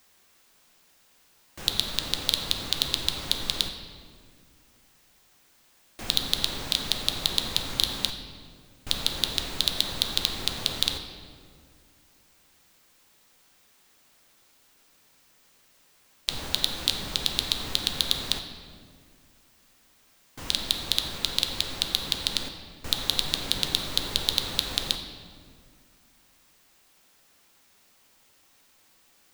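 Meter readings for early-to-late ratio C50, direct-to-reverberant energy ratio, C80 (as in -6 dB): 7.0 dB, 5.0 dB, 8.0 dB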